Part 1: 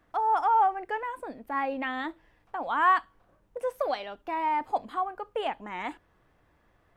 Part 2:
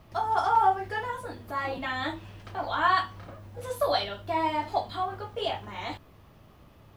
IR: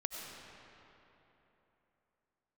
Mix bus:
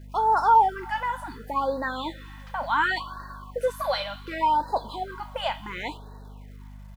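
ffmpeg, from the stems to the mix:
-filter_complex "[0:a]volume=3dB,asplit=2[a][b];[b]volume=-18.5dB[c];[1:a]highpass=f=1.1k:w=0.5412,highpass=f=1.1k:w=1.3066,acrusher=bits=9:mix=0:aa=0.000001,volume=-1,adelay=0.3,volume=-4dB,asplit=2[d][e];[e]volume=-10dB[f];[2:a]atrim=start_sample=2205[g];[c][f]amix=inputs=2:normalize=0[h];[h][g]afir=irnorm=-1:irlink=0[i];[a][d][i]amix=inputs=3:normalize=0,aecho=1:1:2:0.39,aeval=exprs='val(0)+0.00794*(sin(2*PI*50*n/s)+sin(2*PI*2*50*n/s)/2+sin(2*PI*3*50*n/s)/3+sin(2*PI*4*50*n/s)/4+sin(2*PI*5*50*n/s)/5)':c=same,afftfilt=real='re*(1-between(b*sr/1024,340*pow(2700/340,0.5+0.5*sin(2*PI*0.69*pts/sr))/1.41,340*pow(2700/340,0.5+0.5*sin(2*PI*0.69*pts/sr))*1.41))':imag='im*(1-between(b*sr/1024,340*pow(2700/340,0.5+0.5*sin(2*PI*0.69*pts/sr))/1.41,340*pow(2700/340,0.5+0.5*sin(2*PI*0.69*pts/sr))*1.41))':win_size=1024:overlap=0.75"

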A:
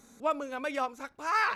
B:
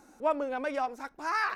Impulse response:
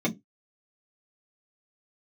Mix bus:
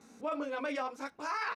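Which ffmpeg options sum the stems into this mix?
-filter_complex "[0:a]lowpass=2.4k,flanger=delay=17.5:depth=6.1:speed=1.8,volume=3dB[a];[1:a]aemphasis=mode=reproduction:type=bsi,aexciter=amount=7.2:drive=6.9:freq=2.2k,adelay=10,volume=-12.5dB[b];[a][b]amix=inputs=2:normalize=0,highpass=120,alimiter=level_in=2.5dB:limit=-24dB:level=0:latency=1:release=24,volume=-2.5dB"

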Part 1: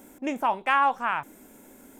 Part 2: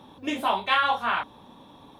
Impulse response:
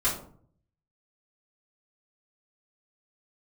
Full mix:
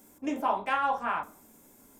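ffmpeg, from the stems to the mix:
-filter_complex "[0:a]highshelf=f=7.7k:g=9,volume=-10.5dB,asplit=3[a][b][c];[b]volume=-22dB[d];[1:a]lowpass=1.1k,volume=-3.5dB,asplit=2[e][f];[f]volume=-22.5dB[g];[c]apad=whole_len=88071[h];[e][h]sidechaingate=range=-33dB:threshold=-48dB:ratio=16:detection=peak[i];[2:a]atrim=start_sample=2205[j];[d][g]amix=inputs=2:normalize=0[k];[k][j]afir=irnorm=-1:irlink=0[l];[a][i][l]amix=inputs=3:normalize=0,equalizer=f=5k:t=o:w=0.78:g=6.5"

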